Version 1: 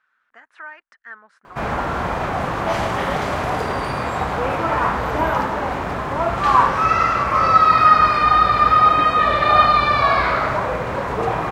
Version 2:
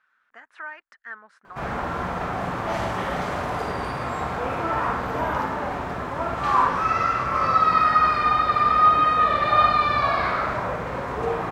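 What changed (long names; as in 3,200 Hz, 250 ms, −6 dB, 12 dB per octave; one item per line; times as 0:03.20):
background −10.0 dB
reverb: on, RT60 0.30 s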